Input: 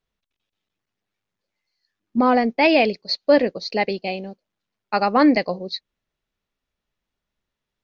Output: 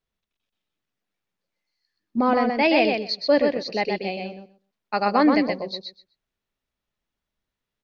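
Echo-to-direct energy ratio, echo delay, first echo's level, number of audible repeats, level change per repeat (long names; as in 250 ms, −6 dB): −4.5 dB, 126 ms, −4.5 dB, 2, −16.5 dB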